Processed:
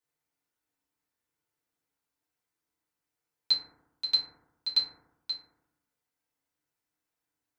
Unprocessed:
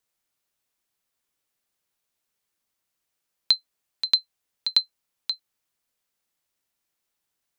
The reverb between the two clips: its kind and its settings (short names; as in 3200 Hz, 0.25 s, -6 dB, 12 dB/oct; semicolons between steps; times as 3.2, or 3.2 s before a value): FDN reverb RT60 0.9 s, low-frequency decay 1.2×, high-frequency decay 0.25×, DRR -8.5 dB; gain -12.5 dB